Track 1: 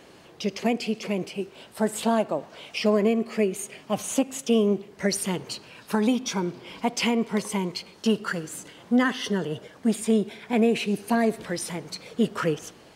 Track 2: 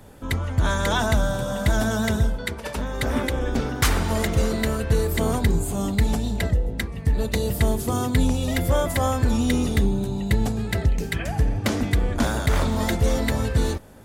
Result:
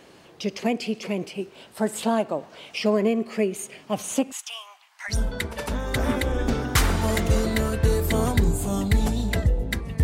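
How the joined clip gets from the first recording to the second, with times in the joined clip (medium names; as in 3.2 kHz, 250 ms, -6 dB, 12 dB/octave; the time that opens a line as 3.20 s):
track 1
4.32–5.22 s: steep high-pass 820 Hz 48 dB/octave
5.15 s: go over to track 2 from 2.22 s, crossfade 0.14 s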